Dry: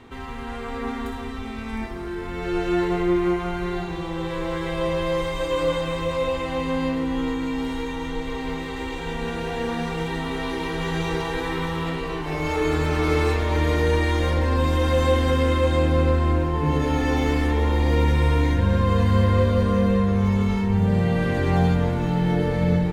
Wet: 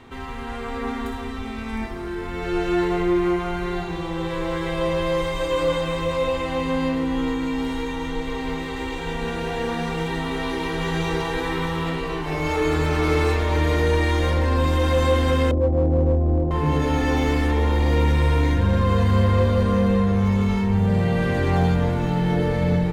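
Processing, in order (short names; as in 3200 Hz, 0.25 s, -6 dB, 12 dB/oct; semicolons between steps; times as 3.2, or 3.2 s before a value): 15.51–16.51 steep low-pass 790 Hz 48 dB/oct; notches 60/120/180/240/300/360/420/480/540 Hz; in parallel at -4.5 dB: hard clip -17.5 dBFS, distortion -14 dB; on the sum: gain -2.5 dB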